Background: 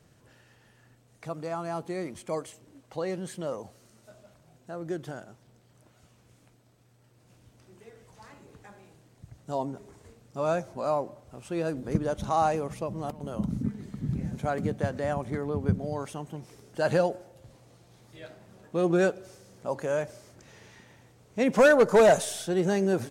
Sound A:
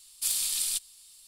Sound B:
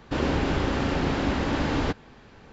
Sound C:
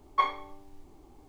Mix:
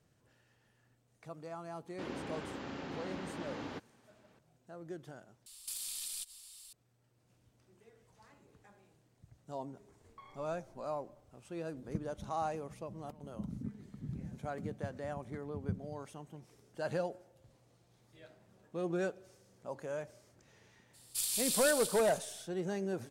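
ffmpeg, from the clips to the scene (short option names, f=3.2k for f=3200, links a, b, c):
-filter_complex "[1:a]asplit=2[a][b];[0:a]volume=-11.5dB[c];[2:a]highpass=140[d];[a]acompressor=threshold=-38dB:ratio=6:attack=3.2:release=140:knee=1:detection=peak[e];[3:a]acompressor=threshold=-34dB:ratio=6:attack=3.2:release=140:knee=1:detection=peak[f];[b]aecho=1:1:160|288|390.4|472.3|537.9|590.3:0.631|0.398|0.251|0.158|0.1|0.0631[g];[c]asplit=2[h][i];[h]atrim=end=5.464[j];[e]atrim=end=1.27,asetpts=PTS-STARTPTS,volume=-0.5dB[k];[i]atrim=start=6.726[l];[d]atrim=end=2.52,asetpts=PTS-STARTPTS,volume=-16.5dB,afade=t=in:d=0.004:c=hsin,afade=t=out:st=2.516:d=0.004:c=hsin,adelay=1870[m];[f]atrim=end=1.28,asetpts=PTS-STARTPTS,volume=-17dB,afade=t=in:d=0.004:c=hsin,afade=t=out:st=1.276:d=0.004:c=hsin,adelay=10000[n];[g]atrim=end=1.27,asetpts=PTS-STARTPTS,volume=-7dB,afade=t=in:d=0.02,afade=t=out:st=1.25:d=0.02,adelay=20930[o];[j][k]acrossfade=d=0.004:c1=hsin:c2=hsin[p];[p][l]acrossfade=d=0.004:c1=hsin:c2=hsin[q];[q][m][n][o]amix=inputs=4:normalize=0"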